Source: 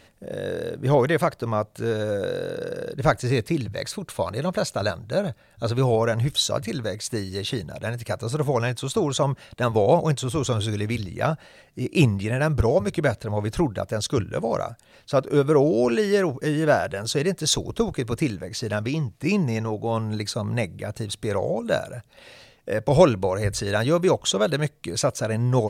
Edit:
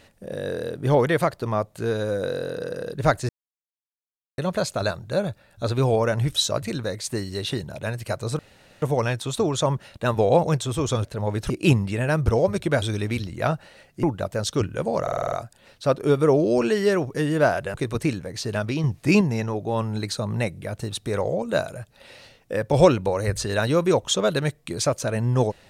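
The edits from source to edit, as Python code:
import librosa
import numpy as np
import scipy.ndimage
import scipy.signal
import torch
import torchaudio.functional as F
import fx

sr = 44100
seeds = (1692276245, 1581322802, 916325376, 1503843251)

y = fx.edit(x, sr, fx.silence(start_s=3.29, length_s=1.09),
    fx.insert_room_tone(at_s=8.39, length_s=0.43),
    fx.swap(start_s=10.61, length_s=1.21, other_s=13.14, other_length_s=0.46),
    fx.stutter(start_s=14.59, slice_s=0.05, count=7),
    fx.cut(start_s=17.01, length_s=0.9),
    fx.clip_gain(start_s=19.01, length_s=0.37, db=5.0), tone=tone)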